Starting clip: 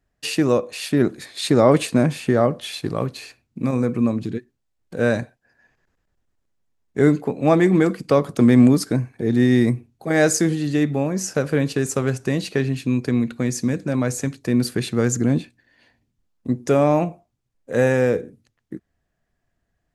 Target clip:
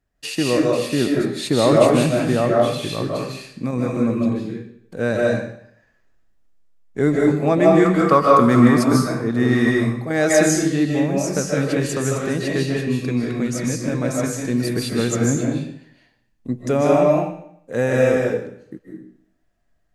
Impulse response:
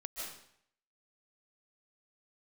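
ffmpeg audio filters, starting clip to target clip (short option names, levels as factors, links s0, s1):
-filter_complex "[0:a]asettb=1/sr,asplit=3[s0][s1][s2];[s0]atrim=end=7.854[s3];[s1]atrim=start=7.85:end=10.07,asetpts=PTS-STARTPTS,afade=t=in:d=0.004:c=qsin,afade=t=out:st=2.216:d=0.004:c=qsin,equalizer=f=1200:w=1.9:g=14.5[s4];[s2]atrim=start=10.066[s5];[s3][s4]acrossfade=d=0.004:c1=hsin:c2=qsin[s6];[s6][s5]acrossfade=d=0.004:c1=qsin:c2=hsin[s7];[1:a]atrim=start_sample=2205[s8];[s7][s8]afir=irnorm=-1:irlink=0,volume=1.33"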